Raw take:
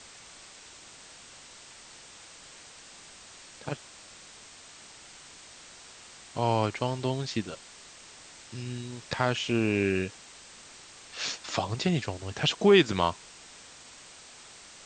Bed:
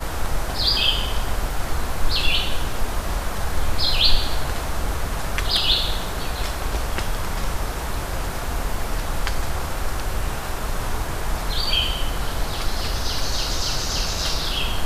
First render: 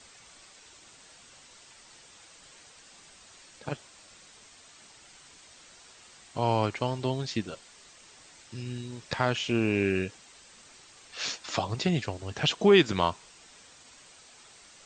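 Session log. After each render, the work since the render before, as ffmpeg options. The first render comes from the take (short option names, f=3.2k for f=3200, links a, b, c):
-af "afftdn=nr=6:nf=-50"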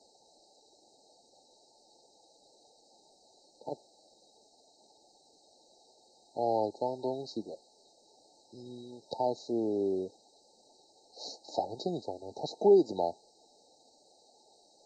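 -filter_complex "[0:a]afftfilt=real='re*(1-between(b*sr/4096,900,3800))':imag='im*(1-between(b*sr/4096,900,3800))':win_size=4096:overlap=0.75,acrossover=split=280 3900:gain=0.0891 1 0.126[a][b][c];[a][b][c]amix=inputs=3:normalize=0"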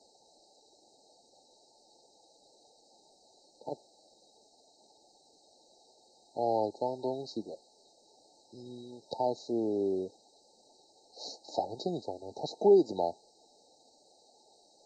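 -af anull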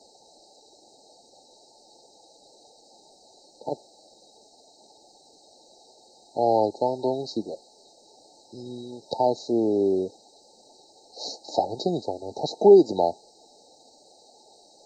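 -af "volume=8.5dB"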